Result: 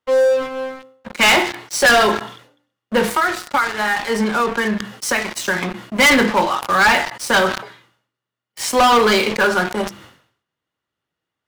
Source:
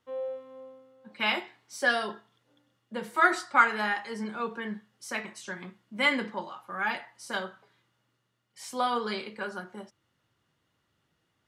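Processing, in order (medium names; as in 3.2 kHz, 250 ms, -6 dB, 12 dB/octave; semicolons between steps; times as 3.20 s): tone controls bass -5 dB, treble -3 dB; hum notches 50/100/150/200/250/300/350 Hz; 3.07–5.55 s: compression 10:1, threshold -37 dBFS, peak gain reduction 22 dB; waveshaping leveller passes 5; decay stretcher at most 100 dB/s; trim +4.5 dB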